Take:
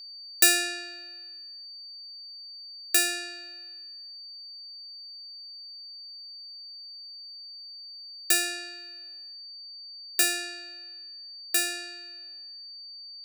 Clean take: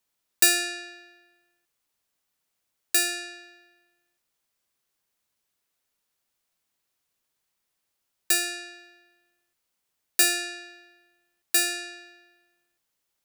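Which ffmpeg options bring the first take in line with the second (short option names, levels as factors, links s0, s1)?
-af "bandreject=f=4600:w=30,asetnsamples=n=441:p=0,asendcmd='9.33 volume volume 3dB',volume=1"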